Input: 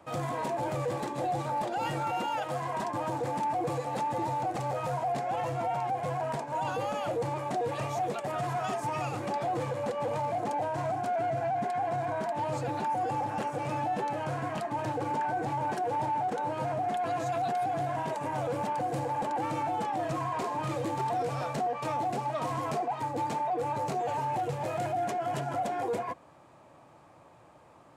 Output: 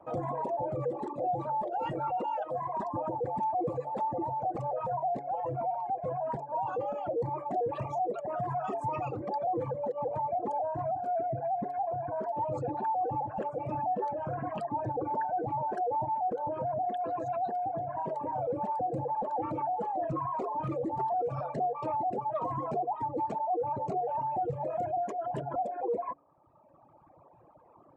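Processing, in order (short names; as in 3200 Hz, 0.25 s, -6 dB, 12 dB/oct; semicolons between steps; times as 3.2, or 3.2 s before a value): formant sharpening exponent 2; reverb removal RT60 1.7 s; de-hum 142.8 Hz, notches 4; gain +1 dB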